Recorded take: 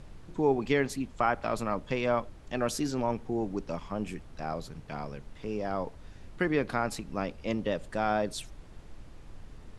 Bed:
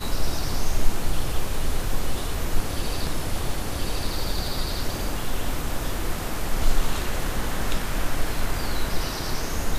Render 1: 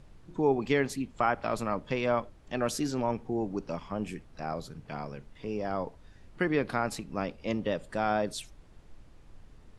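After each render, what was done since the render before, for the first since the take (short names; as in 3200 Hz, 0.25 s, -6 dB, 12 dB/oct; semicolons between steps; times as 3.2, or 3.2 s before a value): noise print and reduce 6 dB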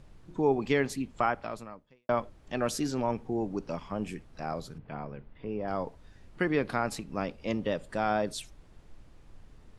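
1.23–2.09 fade out quadratic; 4.78–5.68 air absorption 360 m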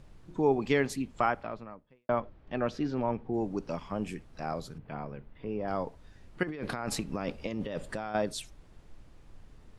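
1.43–3.34 air absorption 270 m; 6.43–8.15 negative-ratio compressor -35 dBFS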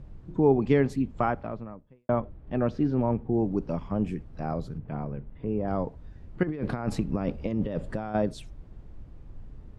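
HPF 62 Hz 6 dB/oct; tilt -3.5 dB/oct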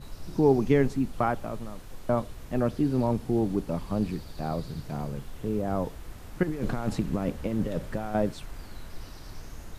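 add bed -19 dB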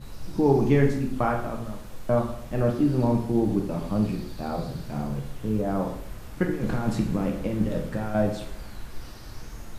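plate-style reverb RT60 0.69 s, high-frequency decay 0.85×, DRR 1 dB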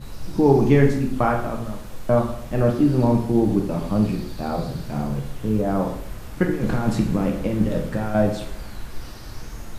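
gain +4.5 dB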